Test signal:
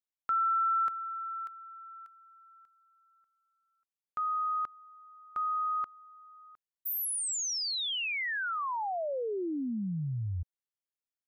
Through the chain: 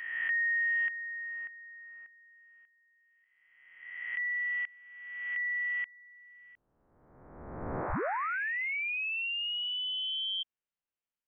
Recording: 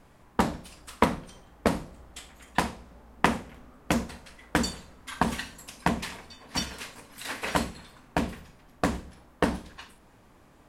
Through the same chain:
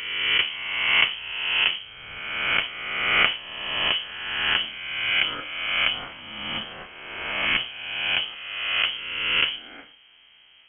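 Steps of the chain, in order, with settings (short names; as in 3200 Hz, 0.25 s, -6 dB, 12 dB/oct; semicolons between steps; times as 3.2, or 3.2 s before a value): spectral swells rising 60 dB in 1.48 s; inverted band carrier 3200 Hz; gain -1.5 dB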